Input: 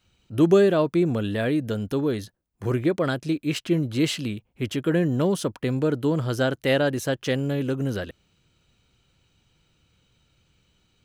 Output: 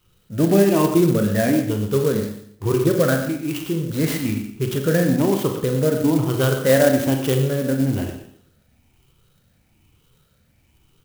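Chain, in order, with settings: moving spectral ripple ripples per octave 0.66, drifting +1.1 Hz, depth 12 dB; LPF 8800 Hz; low shelf 380 Hz +5 dB; notches 60/120/180/240/300/360 Hz; 3.23–3.88 compressor 2:1, threshold -26 dBFS, peak gain reduction 8 dB; echo 0.12 s -14 dB; Schroeder reverb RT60 0.65 s, combs from 30 ms, DRR 4 dB; clock jitter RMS 0.052 ms

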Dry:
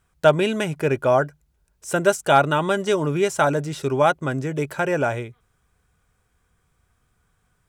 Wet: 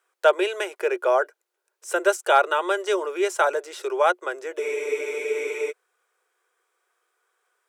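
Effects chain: rippled Chebyshev high-pass 350 Hz, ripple 3 dB; spectral freeze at 4.62, 1.08 s

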